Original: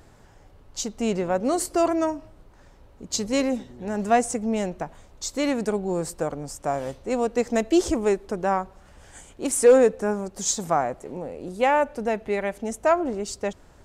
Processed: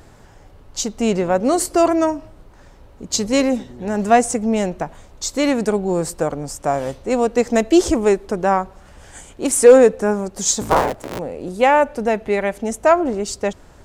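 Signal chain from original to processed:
0:10.61–0:11.19: sub-harmonics by changed cycles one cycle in 3, inverted
level +6.5 dB

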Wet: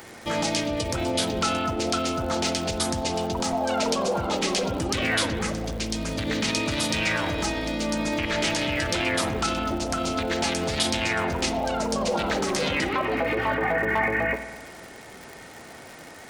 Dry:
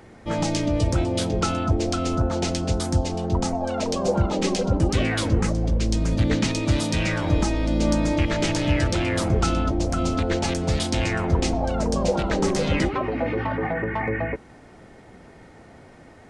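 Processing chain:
dynamic equaliser 7,500 Hz, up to −8 dB, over −47 dBFS, Q 0.82
brickwall limiter −20 dBFS, peak gain reduction 9 dB
spectral tilt +3 dB per octave
spring reverb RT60 1.3 s, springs 50 ms, chirp 60 ms, DRR 9 dB
surface crackle 150 per second −39 dBFS
level +5.5 dB

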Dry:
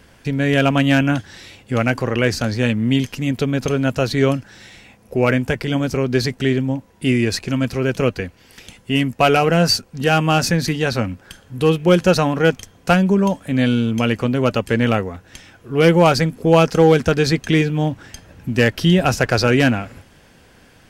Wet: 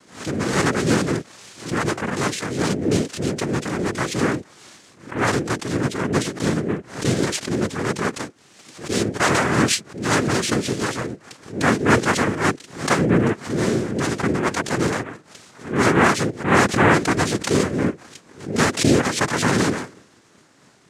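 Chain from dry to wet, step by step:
pitch shifter swept by a sawtooth −2.5 semitones, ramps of 241 ms
cochlear-implant simulation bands 3
background raised ahead of every attack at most 130 dB per second
level −2.5 dB

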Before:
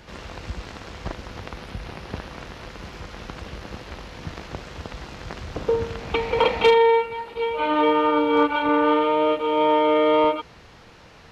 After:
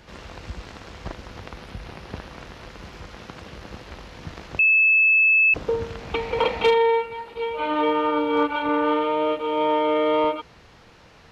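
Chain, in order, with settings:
0:03.16–0:03.57: high-pass filter 83 Hz
0:04.59–0:05.54: beep over 2,610 Hz −11 dBFS
level −2.5 dB

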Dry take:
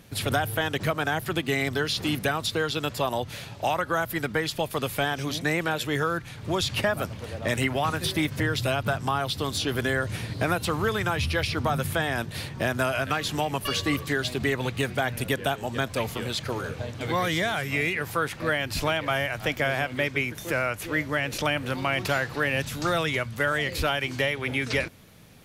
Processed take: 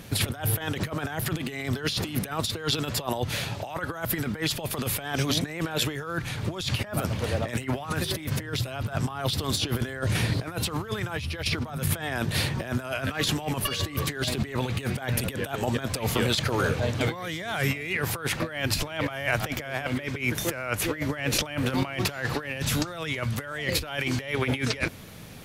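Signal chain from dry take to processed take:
compressor whose output falls as the input rises −31 dBFS, ratio −0.5
level +3.5 dB

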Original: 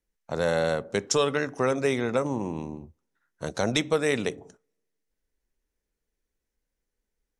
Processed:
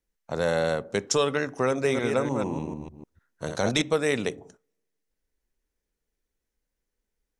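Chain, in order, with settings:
0:01.69–0:03.82: delay that plays each chunk backwards 150 ms, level −5 dB

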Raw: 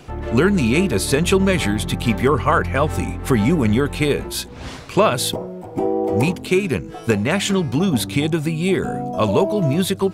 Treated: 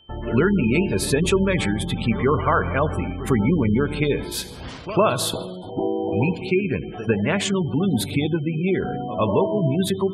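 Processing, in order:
echo ahead of the sound 102 ms −14 dB
reverb whose tail is shaped and stops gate 500 ms falling, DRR 11.5 dB
noise gate with hold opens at −25 dBFS
gate on every frequency bin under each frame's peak −25 dB strong
steady tone 3,100 Hz −49 dBFS
level −3 dB

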